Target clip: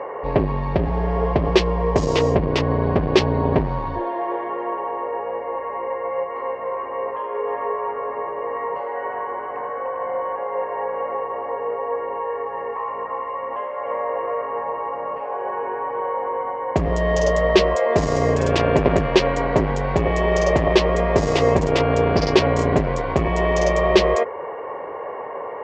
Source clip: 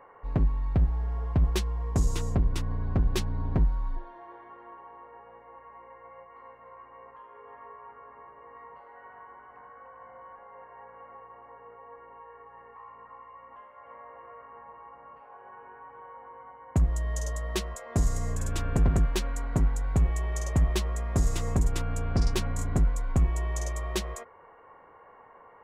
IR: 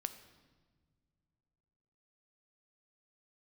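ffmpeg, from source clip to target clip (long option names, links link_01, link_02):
-af "acontrast=89,apsyclip=23dB,highpass=110,equalizer=frequency=110:width_type=q:width=4:gain=-8,equalizer=frequency=210:width_type=q:width=4:gain=-6,equalizer=frequency=410:width_type=q:width=4:gain=7,equalizer=frequency=580:width_type=q:width=4:gain=8,equalizer=frequency=1400:width_type=q:width=4:gain=-8,equalizer=frequency=3800:width_type=q:width=4:gain=-5,lowpass=frequency=4600:width=0.5412,lowpass=frequency=4600:width=1.3066,volume=-9.5dB"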